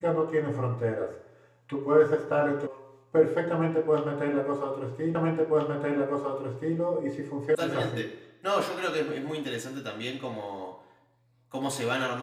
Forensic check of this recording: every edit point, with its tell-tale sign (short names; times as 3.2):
2.67 sound cut off
5.15 repeat of the last 1.63 s
7.55 sound cut off